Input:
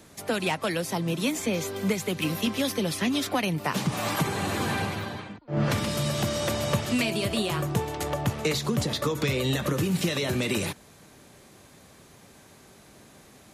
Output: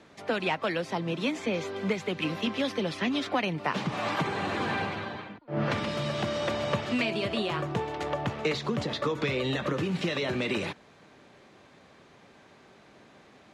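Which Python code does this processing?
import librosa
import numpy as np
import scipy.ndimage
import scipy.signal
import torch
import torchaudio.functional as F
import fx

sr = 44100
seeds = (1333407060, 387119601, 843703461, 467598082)

y = scipy.signal.sosfilt(scipy.signal.butter(2, 3400.0, 'lowpass', fs=sr, output='sos'), x)
y = fx.low_shelf(y, sr, hz=140.0, db=-12.0)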